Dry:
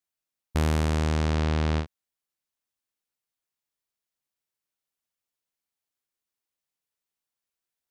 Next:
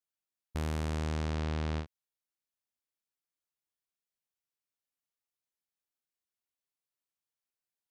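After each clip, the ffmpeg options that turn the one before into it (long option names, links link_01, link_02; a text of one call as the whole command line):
ffmpeg -i in.wav -af "alimiter=limit=-19dB:level=0:latency=1:release=242,volume=-7dB" out.wav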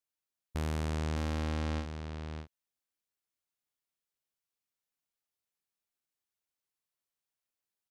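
ffmpeg -i in.wav -af "aecho=1:1:608:0.422" out.wav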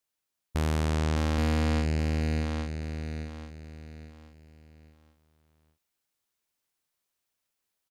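ffmpeg -i in.wav -af "aecho=1:1:827|1654|2481|3308:0.596|0.191|0.061|0.0195,volume=6.5dB" out.wav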